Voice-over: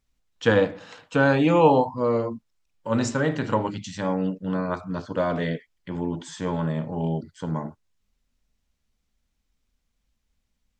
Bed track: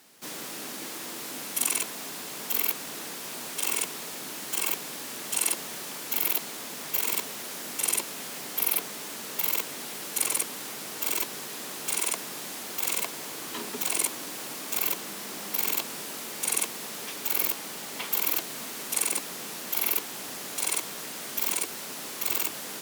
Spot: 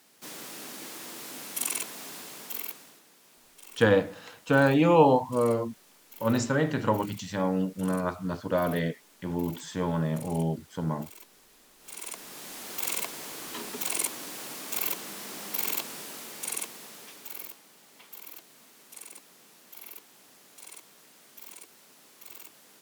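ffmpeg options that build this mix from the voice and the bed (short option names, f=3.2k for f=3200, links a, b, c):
-filter_complex "[0:a]adelay=3350,volume=-2dB[a];[1:a]volume=14.5dB,afade=t=out:st=2.15:d=0.87:silence=0.141254,afade=t=in:st=11.78:d=0.96:silence=0.11885,afade=t=out:st=15.74:d=1.89:silence=0.158489[b];[a][b]amix=inputs=2:normalize=0"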